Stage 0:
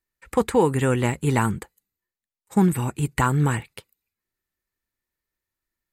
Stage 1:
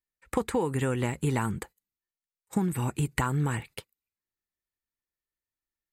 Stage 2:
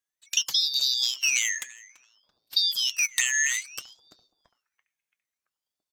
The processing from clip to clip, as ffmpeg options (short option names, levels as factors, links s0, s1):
-af "agate=range=0.251:threshold=0.00631:ratio=16:detection=peak,acompressor=threshold=0.0501:ratio=6,volume=1.19"
-filter_complex "[0:a]afftfilt=real='real(if(lt(b,736),b+184*(1-2*mod(floor(b/184),2)),b),0)':imag='imag(if(lt(b,736),b+184*(1-2*mod(floor(b/184),2)),b),0)':win_size=2048:overlap=0.75,asplit=2[s0][s1];[s1]adelay=336,lowpass=f=1300:p=1,volume=0.282,asplit=2[s2][s3];[s3]adelay=336,lowpass=f=1300:p=1,volume=0.53,asplit=2[s4][s5];[s5]adelay=336,lowpass=f=1300:p=1,volume=0.53,asplit=2[s6][s7];[s7]adelay=336,lowpass=f=1300:p=1,volume=0.53,asplit=2[s8][s9];[s9]adelay=336,lowpass=f=1300:p=1,volume=0.53,asplit=2[s10][s11];[s11]adelay=336,lowpass=f=1300:p=1,volume=0.53[s12];[s0][s2][s4][s6][s8][s10][s12]amix=inputs=7:normalize=0,aeval=exprs='val(0)*sin(2*PI*1400*n/s+1400*0.7/0.59*sin(2*PI*0.59*n/s))':c=same,volume=1.88"